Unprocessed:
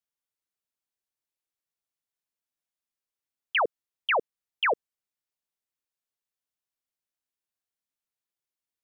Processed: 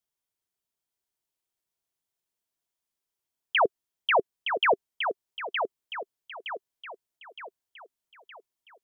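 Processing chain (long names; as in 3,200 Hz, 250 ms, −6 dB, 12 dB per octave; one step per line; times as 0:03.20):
bass and treble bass +5 dB, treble +3 dB
hollow resonant body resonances 390/670/940/3,200 Hz, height 6 dB, ringing for 30 ms
on a send: feedback echo with a high-pass in the loop 916 ms, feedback 47%, high-pass 270 Hz, level −6 dB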